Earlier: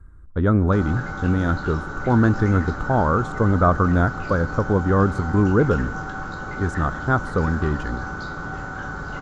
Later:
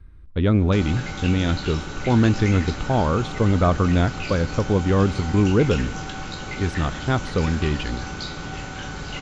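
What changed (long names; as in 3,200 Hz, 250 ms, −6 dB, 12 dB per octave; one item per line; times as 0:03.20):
speech: add Savitzky-Golay smoothing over 15 samples
master: add high shelf with overshoot 1,900 Hz +9.5 dB, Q 3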